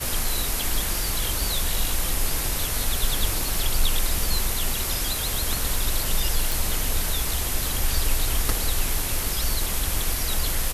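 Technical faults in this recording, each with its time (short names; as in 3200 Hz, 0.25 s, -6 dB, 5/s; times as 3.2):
6.52 pop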